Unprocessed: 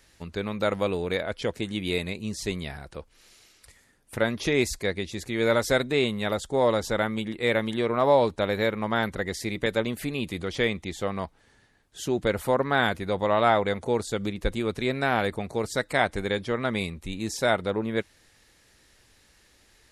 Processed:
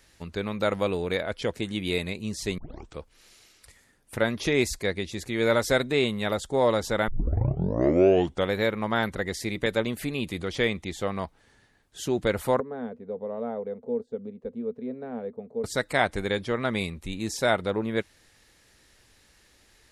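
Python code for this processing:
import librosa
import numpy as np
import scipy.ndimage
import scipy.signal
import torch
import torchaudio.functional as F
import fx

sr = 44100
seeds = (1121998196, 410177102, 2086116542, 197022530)

y = fx.double_bandpass(x, sr, hz=330.0, octaves=0.88, at=(12.6, 15.64))
y = fx.edit(y, sr, fx.tape_start(start_s=2.58, length_s=0.4),
    fx.tape_start(start_s=7.08, length_s=1.45), tone=tone)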